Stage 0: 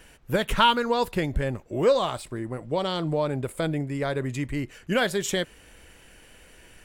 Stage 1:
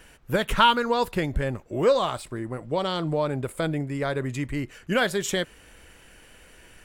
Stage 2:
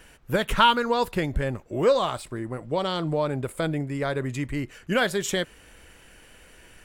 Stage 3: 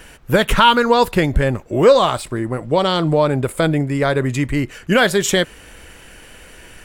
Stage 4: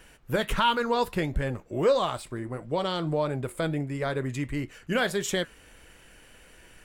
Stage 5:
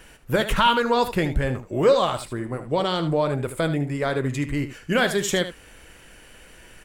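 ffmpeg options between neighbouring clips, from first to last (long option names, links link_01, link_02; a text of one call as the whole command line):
ffmpeg -i in.wav -af "equalizer=frequency=1300:width_type=o:width=0.77:gain=2.5" out.wav
ffmpeg -i in.wav -af anull out.wav
ffmpeg -i in.wav -af "alimiter=level_in=11dB:limit=-1dB:release=50:level=0:latency=1,volume=-1dB" out.wav
ffmpeg -i in.wav -af "flanger=delay=5.2:depth=3.1:regen=-79:speed=1.5:shape=triangular,volume=-7.5dB" out.wav
ffmpeg -i in.wav -af "aecho=1:1:76:0.266,volume=5dB" out.wav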